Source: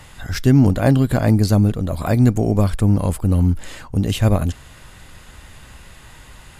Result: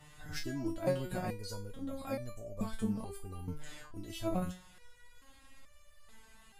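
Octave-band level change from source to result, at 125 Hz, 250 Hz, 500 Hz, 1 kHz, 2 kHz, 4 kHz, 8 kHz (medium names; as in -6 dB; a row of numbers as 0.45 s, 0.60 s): -27.0 dB, -21.5 dB, -16.0 dB, -16.0 dB, -17.0 dB, -16.0 dB, -16.0 dB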